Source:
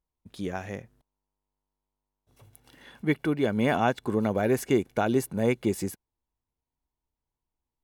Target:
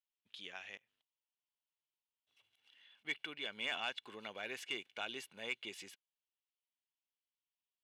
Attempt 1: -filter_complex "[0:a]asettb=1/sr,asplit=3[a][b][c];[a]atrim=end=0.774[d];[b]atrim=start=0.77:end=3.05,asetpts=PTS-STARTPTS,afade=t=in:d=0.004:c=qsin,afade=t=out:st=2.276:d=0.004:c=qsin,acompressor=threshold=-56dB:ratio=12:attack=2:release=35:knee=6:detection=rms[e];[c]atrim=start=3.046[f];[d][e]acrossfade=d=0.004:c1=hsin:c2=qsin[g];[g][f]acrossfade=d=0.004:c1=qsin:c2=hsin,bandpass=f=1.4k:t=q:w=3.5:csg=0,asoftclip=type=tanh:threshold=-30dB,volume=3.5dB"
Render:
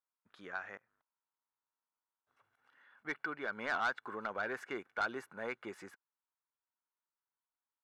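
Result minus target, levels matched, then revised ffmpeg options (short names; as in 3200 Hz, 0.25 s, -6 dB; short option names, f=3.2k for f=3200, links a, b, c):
4000 Hz band -13.5 dB
-filter_complex "[0:a]asettb=1/sr,asplit=3[a][b][c];[a]atrim=end=0.774[d];[b]atrim=start=0.77:end=3.05,asetpts=PTS-STARTPTS,afade=t=in:d=0.004:c=qsin,afade=t=out:st=2.276:d=0.004:c=qsin,acompressor=threshold=-56dB:ratio=12:attack=2:release=35:knee=6:detection=rms[e];[c]atrim=start=3.046[f];[d][e]acrossfade=d=0.004:c1=hsin:c2=qsin[g];[g][f]acrossfade=d=0.004:c1=qsin:c2=hsin,bandpass=f=3k:t=q:w=3.5:csg=0,asoftclip=type=tanh:threshold=-30dB,volume=3.5dB"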